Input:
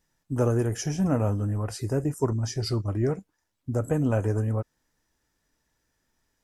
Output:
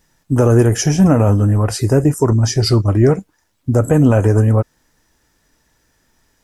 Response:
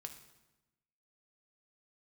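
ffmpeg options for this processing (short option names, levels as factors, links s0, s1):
-af "alimiter=level_in=5.62:limit=0.891:release=50:level=0:latency=1,volume=0.891"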